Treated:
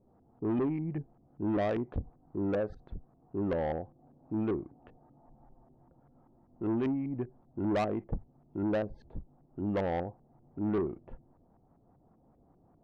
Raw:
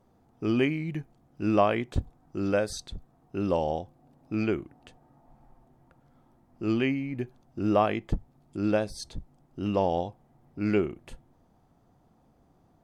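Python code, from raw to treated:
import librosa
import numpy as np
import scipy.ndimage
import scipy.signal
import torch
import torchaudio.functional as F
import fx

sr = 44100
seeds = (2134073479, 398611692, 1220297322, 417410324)

y = fx.filter_lfo_lowpass(x, sr, shape='saw_up', hz=5.1, low_hz=380.0, high_hz=1500.0, q=0.89)
y = fx.bass_treble(y, sr, bass_db=-2, treble_db=-15)
y = 10.0 ** (-25.5 / 20.0) * np.tanh(y / 10.0 ** (-25.5 / 20.0))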